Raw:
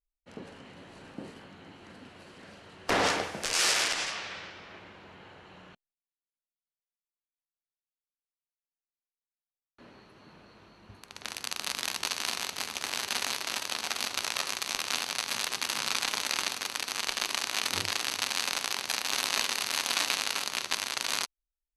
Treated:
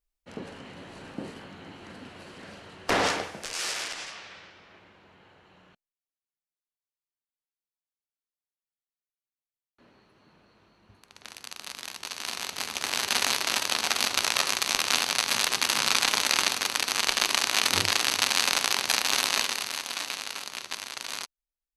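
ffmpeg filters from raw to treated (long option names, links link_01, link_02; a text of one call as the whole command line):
ffmpeg -i in.wav -af "volume=17.5dB,afade=type=out:start_time=2.55:duration=0.98:silence=0.281838,afade=type=in:start_time=12.03:duration=1.24:silence=0.237137,afade=type=out:start_time=18.97:duration=0.87:silence=0.281838" out.wav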